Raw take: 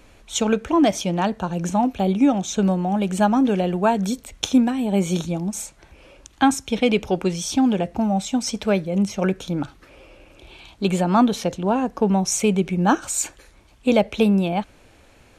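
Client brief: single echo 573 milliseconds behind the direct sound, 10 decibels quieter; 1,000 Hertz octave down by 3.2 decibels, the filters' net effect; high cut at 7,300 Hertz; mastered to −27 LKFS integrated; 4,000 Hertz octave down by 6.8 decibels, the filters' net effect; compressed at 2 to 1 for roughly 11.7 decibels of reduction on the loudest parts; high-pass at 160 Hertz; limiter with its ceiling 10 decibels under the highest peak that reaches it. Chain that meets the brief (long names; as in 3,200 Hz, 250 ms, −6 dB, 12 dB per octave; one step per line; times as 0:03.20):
high-pass filter 160 Hz
low-pass filter 7,300 Hz
parametric band 1,000 Hz −4 dB
parametric band 4,000 Hz −9 dB
downward compressor 2 to 1, threshold −35 dBFS
brickwall limiter −24.5 dBFS
single-tap delay 573 ms −10 dB
level +7 dB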